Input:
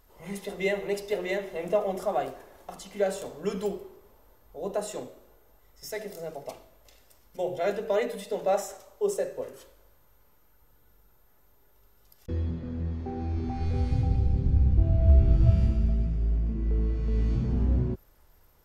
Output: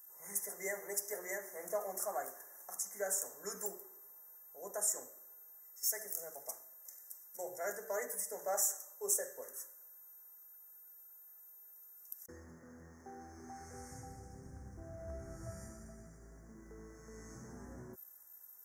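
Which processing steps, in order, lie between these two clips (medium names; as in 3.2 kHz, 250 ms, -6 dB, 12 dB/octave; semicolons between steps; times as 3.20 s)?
elliptic band-stop 1.8–5.9 kHz, stop band 40 dB; differentiator; trim +9 dB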